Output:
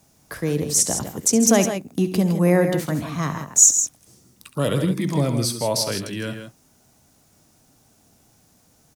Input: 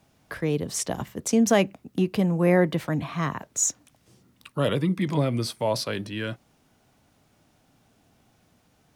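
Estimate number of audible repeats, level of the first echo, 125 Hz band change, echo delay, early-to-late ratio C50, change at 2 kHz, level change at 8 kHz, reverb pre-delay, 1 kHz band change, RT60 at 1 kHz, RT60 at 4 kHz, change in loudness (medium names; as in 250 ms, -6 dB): 2, -12.5 dB, +3.5 dB, 68 ms, no reverb, +1.0 dB, +12.0 dB, no reverb, +1.5 dB, no reverb, no reverb, +5.5 dB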